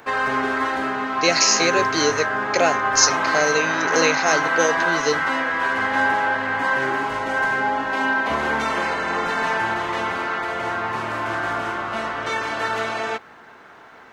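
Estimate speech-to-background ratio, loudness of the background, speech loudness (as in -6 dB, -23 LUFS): 1.0 dB, -22.0 LUFS, -21.0 LUFS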